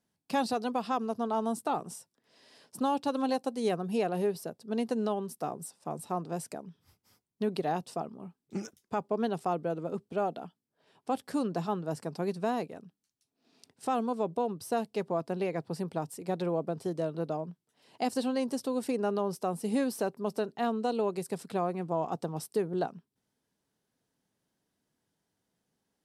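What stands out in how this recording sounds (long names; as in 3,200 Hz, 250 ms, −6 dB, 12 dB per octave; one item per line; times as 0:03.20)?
background noise floor −84 dBFS
spectral slope −5.5 dB per octave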